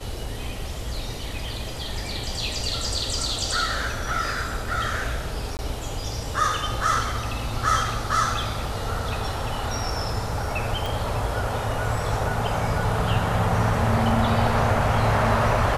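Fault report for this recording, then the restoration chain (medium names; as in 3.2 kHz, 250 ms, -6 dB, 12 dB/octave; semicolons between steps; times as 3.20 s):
5.57–5.59 s: dropout 19 ms
10.86 s: pop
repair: de-click; interpolate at 5.57 s, 19 ms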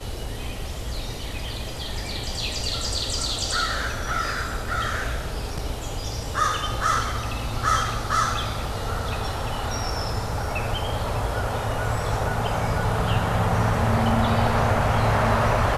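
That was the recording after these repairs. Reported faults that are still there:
10.86 s: pop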